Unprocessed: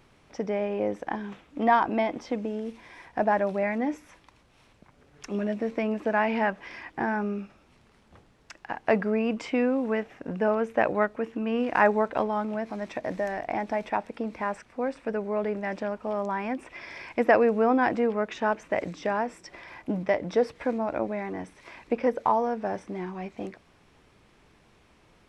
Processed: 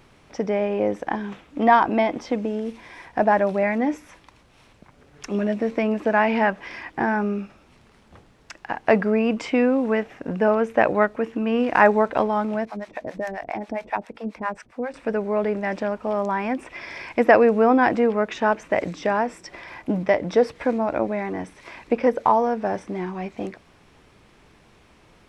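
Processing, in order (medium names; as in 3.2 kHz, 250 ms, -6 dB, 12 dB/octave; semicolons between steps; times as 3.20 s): 12.65–14.94 s: harmonic tremolo 7.4 Hz, depth 100%, crossover 580 Hz; trim +5.5 dB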